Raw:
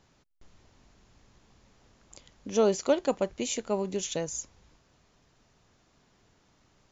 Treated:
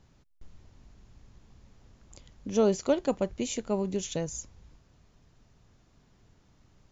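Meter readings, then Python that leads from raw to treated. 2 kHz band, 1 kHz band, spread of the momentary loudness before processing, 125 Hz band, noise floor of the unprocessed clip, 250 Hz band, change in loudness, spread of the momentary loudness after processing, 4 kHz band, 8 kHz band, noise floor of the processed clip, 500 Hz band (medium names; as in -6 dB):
-3.0 dB, -2.5 dB, 12 LU, +4.0 dB, -67 dBFS, +2.5 dB, -0.5 dB, 11 LU, -3.0 dB, no reading, -64 dBFS, -1.0 dB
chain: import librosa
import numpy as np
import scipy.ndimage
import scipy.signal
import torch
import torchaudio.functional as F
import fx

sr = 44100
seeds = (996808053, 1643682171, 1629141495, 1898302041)

y = fx.low_shelf(x, sr, hz=210.0, db=12.0)
y = y * librosa.db_to_amplitude(-3.0)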